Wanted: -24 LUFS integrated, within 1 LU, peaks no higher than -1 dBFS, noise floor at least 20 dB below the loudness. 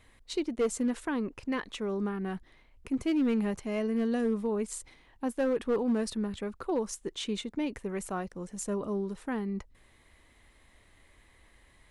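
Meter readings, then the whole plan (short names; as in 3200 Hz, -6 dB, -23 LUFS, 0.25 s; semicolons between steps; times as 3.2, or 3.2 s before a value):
clipped 0.8%; flat tops at -22.5 dBFS; loudness -32.5 LUFS; peak -22.5 dBFS; loudness target -24.0 LUFS
-> clip repair -22.5 dBFS; gain +8.5 dB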